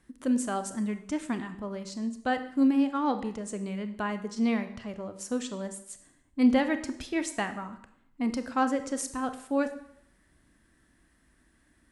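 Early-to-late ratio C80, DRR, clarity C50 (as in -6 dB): 14.5 dB, 9.5 dB, 12.0 dB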